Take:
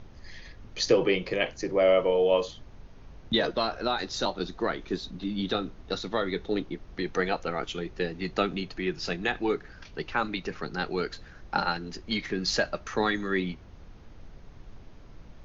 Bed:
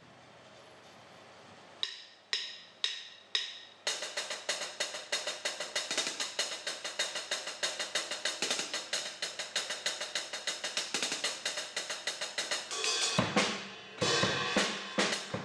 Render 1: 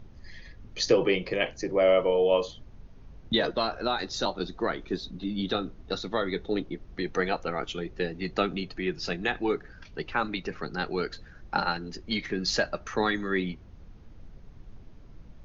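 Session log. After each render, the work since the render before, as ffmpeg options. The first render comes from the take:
-af "afftdn=nr=6:nf=-49"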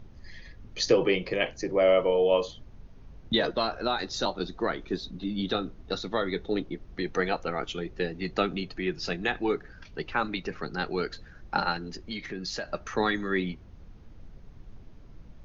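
-filter_complex "[0:a]asettb=1/sr,asplit=3[a][b][c];[a]atrim=end=11.964[d];[b]atrim=start=11.96:end=12.69,asetpts=PTS-STARTPTS,afade=t=in:d=0.004:c=qsin,afade=t=out:st=0.726:d=0.004:c=qsin,acompressor=threshold=-36dB:ratio=2:attack=3.2:release=140:knee=1:detection=peak[e];[c]atrim=start=12.686[f];[d][e]acrossfade=d=0.004:c1=hsin:c2=qsin[g];[g][f]acrossfade=d=0.004:c1=qsin:c2=hsin"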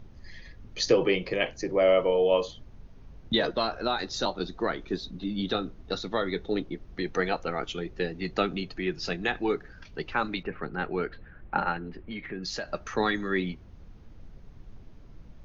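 -filter_complex "[0:a]asettb=1/sr,asplit=3[a][b][c];[a]atrim=end=10.434[d];[b]atrim=start=10.43:end=12.43,asetpts=PTS-STARTPTS,afade=t=in:d=0.004:c=qsin,afade=t=out:st=1.996:d=0.004:c=qsin,lowpass=f=2.7k:w=0.5412,lowpass=f=2.7k:w=1.3066[e];[c]atrim=start=12.426[f];[d][e]acrossfade=d=0.004:c1=hsin:c2=qsin[g];[g][f]acrossfade=d=0.004:c1=qsin:c2=hsin"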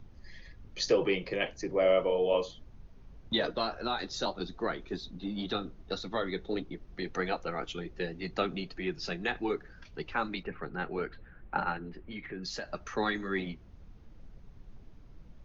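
-filter_complex "[0:a]acrossover=split=260[a][b];[a]asoftclip=type=hard:threshold=-33.5dB[c];[c][b]amix=inputs=2:normalize=0,flanger=delay=0.8:depth=5.1:regen=-60:speed=1.8:shape=sinusoidal"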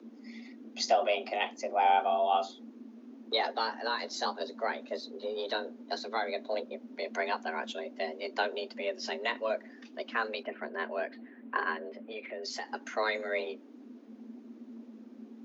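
-af "afreqshift=220"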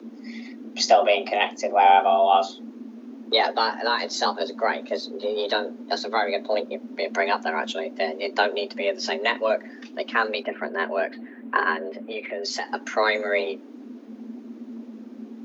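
-af "volume=9.5dB"

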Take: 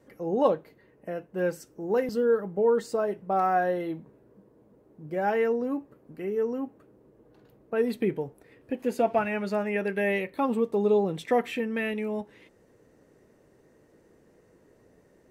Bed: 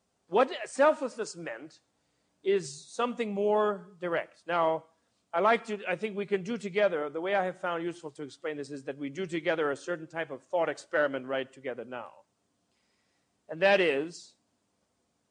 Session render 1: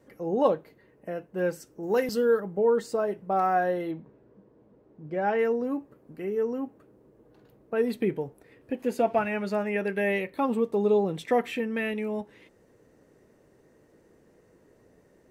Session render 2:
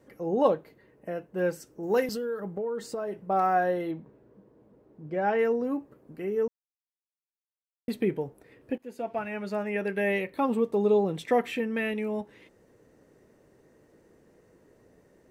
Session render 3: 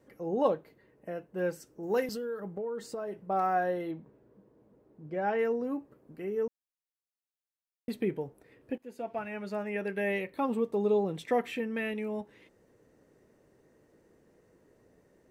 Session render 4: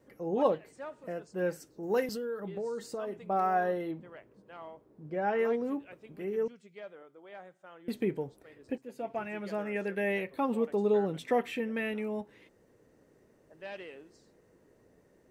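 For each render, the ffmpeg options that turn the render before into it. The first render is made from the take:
-filter_complex "[0:a]asettb=1/sr,asplit=3[a][b][c];[a]atrim=end=1.834[d];[b]atrim=start=1.83:end=2.4,asetpts=PTS-STARTPTS,afade=t=in:d=0.004:c=qsin,afade=t=out:st=0.566:d=0.004:c=qsin,highshelf=f=2k:g=9[e];[c]atrim=start=2.396[f];[d][e]acrossfade=d=0.004:c1=hsin:c2=qsin[g];[g][f]acrossfade=d=0.004:c1=qsin:c2=hsin,asettb=1/sr,asplit=3[h][i][j];[h]atrim=end=3.914[k];[i]atrim=start=3.91:end=5.39,asetpts=PTS-STARTPTS,afade=t=in:d=0.004:c=qsin,afade=t=out:st=1.476:d=0.004:c=qsin,lowpass=4.5k[l];[j]atrim=start=5.386[m];[k][l]acrossfade=d=0.004:c1=hsin:c2=qsin[n];[n][m]acrossfade=d=0.004:c1=qsin:c2=hsin"
-filter_complex "[0:a]asettb=1/sr,asplit=3[a][b][c];[a]atrim=end=2.054[d];[b]atrim=start=2.05:end=3.2,asetpts=PTS-STARTPTS,afade=t=in:d=0.004:c=qsin,afade=t=out:st=1.146:d=0.004:c=qsin,acompressor=threshold=-29dB:ratio=6:attack=3.2:release=140:knee=1:detection=peak[e];[c]atrim=start=3.196[f];[d][e]acrossfade=d=0.004:c1=hsin:c2=qsin[g];[g][f]acrossfade=d=0.004:c1=qsin:c2=hsin,asplit=4[h][i][j][k];[h]atrim=end=6.48,asetpts=PTS-STARTPTS,afade=t=out:st=6.476:d=0.004:c=hsin[l];[i]atrim=start=6.48:end=7.88,asetpts=PTS-STARTPTS,volume=0[m];[j]atrim=start=7.88:end=8.78,asetpts=PTS-STARTPTS,afade=t=in:d=0.004:c=hsin,afade=t=out:st=0.896:d=0.004:c=hsin:silence=0.125893[n];[k]atrim=start=8.78,asetpts=PTS-STARTPTS,afade=t=in:d=1.68:c=qsin:silence=0.125893[o];[l][m][n][o]concat=n=4:v=0:a=1"
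-af "volume=-4dB"
-filter_complex "[1:a]volume=-20dB[a];[0:a][a]amix=inputs=2:normalize=0"

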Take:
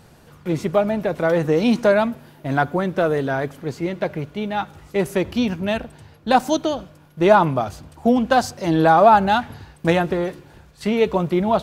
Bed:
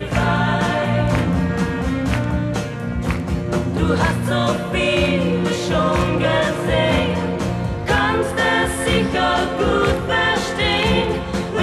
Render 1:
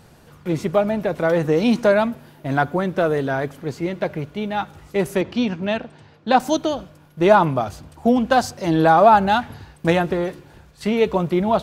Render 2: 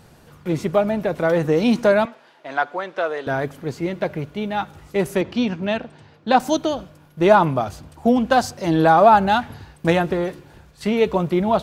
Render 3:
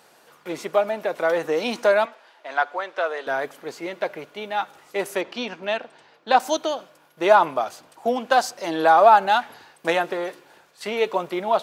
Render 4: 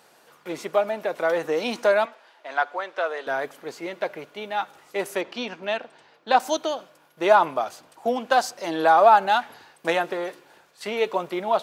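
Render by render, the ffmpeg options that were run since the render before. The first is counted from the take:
-filter_complex "[0:a]asettb=1/sr,asplit=3[a][b][c];[a]atrim=end=5.214[d];[b]atrim=start=5.21:end=6.4,asetpts=PTS-STARTPTS,afade=t=in:d=0.004:c=qsin,afade=t=out:st=1.186:d=0.004:c=qsin,highpass=130,lowpass=5.4k[e];[c]atrim=start=6.396[f];[d][e]acrossfade=d=0.004:c1=hsin:c2=qsin[g];[g][f]acrossfade=d=0.004:c1=qsin:c2=hsin"
-filter_complex "[0:a]asettb=1/sr,asplit=3[a][b][c];[a]atrim=end=2.054[d];[b]atrim=start=2.05:end=3.27,asetpts=PTS-STARTPTS,afade=t=in:d=0.004:c=qsin,afade=t=out:st=1.216:d=0.004:c=qsin,highpass=610,lowpass=5.3k[e];[c]atrim=start=3.266[f];[d][e]acrossfade=d=0.004:c1=hsin:c2=qsin[g];[g][f]acrossfade=d=0.004:c1=qsin:c2=hsin"
-af "highpass=510"
-af "volume=-1.5dB"

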